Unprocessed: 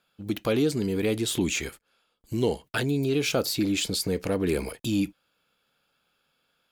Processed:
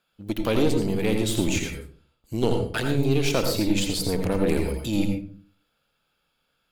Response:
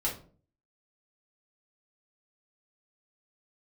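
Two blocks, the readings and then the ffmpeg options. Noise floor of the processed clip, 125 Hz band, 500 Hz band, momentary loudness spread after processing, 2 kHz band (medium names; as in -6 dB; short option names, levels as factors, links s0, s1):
-74 dBFS, +4.5 dB, +2.0 dB, 10 LU, +1.0 dB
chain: -filter_complex "[0:a]aeval=exprs='0.237*(cos(1*acos(clip(val(0)/0.237,-1,1)))-cos(1*PI/2))+0.0531*(cos(2*acos(clip(val(0)/0.237,-1,1)))-cos(2*PI/2))+0.0075*(cos(7*acos(clip(val(0)/0.237,-1,1)))-cos(7*PI/2))':c=same,asplit=2[s0][s1];[s1]lowshelf=f=97:g=10[s2];[1:a]atrim=start_sample=2205,adelay=82[s3];[s2][s3]afir=irnorm=-1:irlink=0,volume=0.335[s4];[s0][s4]amix=inputs=2:normalize=0"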